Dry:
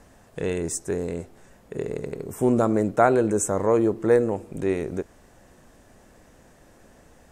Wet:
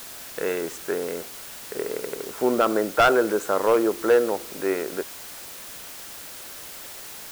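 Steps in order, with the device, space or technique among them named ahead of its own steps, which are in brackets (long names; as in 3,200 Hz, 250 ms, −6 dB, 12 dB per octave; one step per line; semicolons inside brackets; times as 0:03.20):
drive-through speaker (band-pass filter 390–3,100 Hz; parametric band 1,400 Hz +8.5 dB 0.46 octaves; hard clipping −14.5 dBFS, distortion −11 dB; white noise bed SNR 14 dB)
level +3 dB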